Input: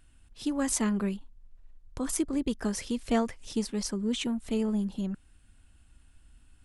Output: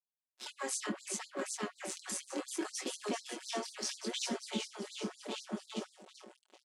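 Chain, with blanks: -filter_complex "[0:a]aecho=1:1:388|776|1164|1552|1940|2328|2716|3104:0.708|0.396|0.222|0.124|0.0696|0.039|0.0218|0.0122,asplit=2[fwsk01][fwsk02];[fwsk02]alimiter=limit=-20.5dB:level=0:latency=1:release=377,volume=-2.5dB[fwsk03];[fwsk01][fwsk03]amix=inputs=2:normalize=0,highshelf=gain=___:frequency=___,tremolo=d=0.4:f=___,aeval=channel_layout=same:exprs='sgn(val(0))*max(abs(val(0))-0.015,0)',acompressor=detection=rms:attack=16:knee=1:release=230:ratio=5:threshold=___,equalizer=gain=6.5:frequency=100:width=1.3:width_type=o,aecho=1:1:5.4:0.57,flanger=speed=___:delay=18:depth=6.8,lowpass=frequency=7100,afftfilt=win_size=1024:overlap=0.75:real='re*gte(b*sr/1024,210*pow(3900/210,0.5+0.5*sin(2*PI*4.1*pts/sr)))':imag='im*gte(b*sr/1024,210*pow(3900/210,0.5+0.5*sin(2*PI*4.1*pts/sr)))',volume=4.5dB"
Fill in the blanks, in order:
4.5, 5300, 130, -31dB, 0.69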